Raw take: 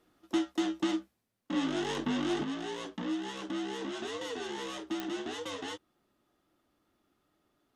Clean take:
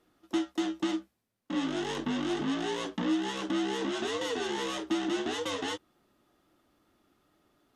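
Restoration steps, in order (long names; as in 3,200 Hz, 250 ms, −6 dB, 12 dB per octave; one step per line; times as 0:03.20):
click removal
level correction +5.5 dB, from 0:02.44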